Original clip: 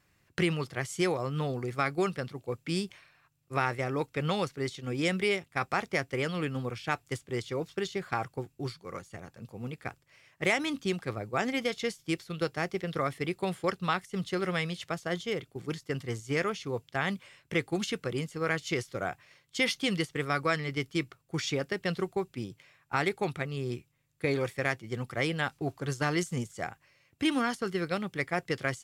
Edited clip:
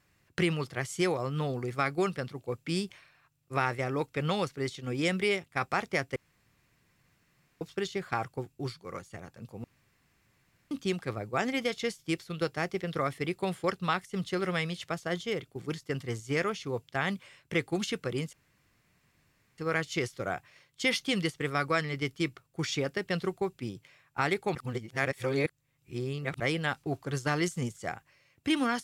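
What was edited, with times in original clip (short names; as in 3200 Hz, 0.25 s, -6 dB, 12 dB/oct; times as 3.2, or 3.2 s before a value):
6.16–7.61 room tone
9.64–10.71 room tone
18.33 insert room tone 1.25 s
23.3–25.15 reverse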